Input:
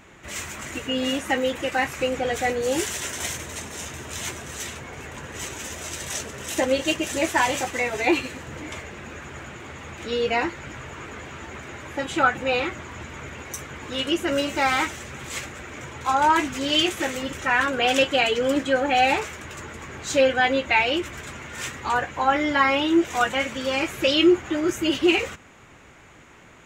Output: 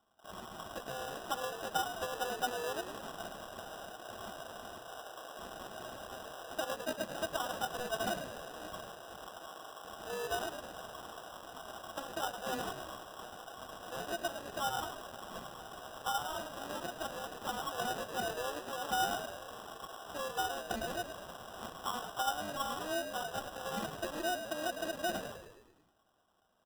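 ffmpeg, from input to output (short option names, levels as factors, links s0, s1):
-filter_complex "[0:a]acompressor=threshold=0.0501:ratio=16,aecho=1:1:6.2:0.72,aresample=11025,aeval=exprs='max(val(0),0)':c=same,aresample=44100,asplit=3[s0][s1][s2];[s0]bandpass=f=730:t=q:w=8,volume=1[s3];[s1]bandpass=f=1090:t=q:w=8,volume=0.501[s4];[s2]bandpass=f=2440:t=q:w=8,volume=0.355[s5];[s3][s4][s5]amix=inputs=3:normalize=0,afwtdn=0.00178,asplit=8[s6][s7][s8][s9][s10][s11][s12][s13];[s7]adelay=105,afreqshift=-58,volume=0.355[s14];[s8]adelay=210,afreqshift=-116,volume=0.2[s15];[s9]adelay=315,afreqshift=-174,volume=0.111[s16];[s10]adelay=420,afreqshift=-232,volume=0.0624[s17];[s11]adelay=525,afreqshift=-290,volume=0.0351[s18];[s12]adelay=630,afreqshift=-348,volume=0.0195[s19];[s13]adelay=735,afreqshift=-406,volume=0.011[s20];[s6][s14][s15][s16][s17][s18][s19][s20]amix=inputs=8:normalize=0,acrusher=samples=20:mix=1:aa=0.000001,volume=2"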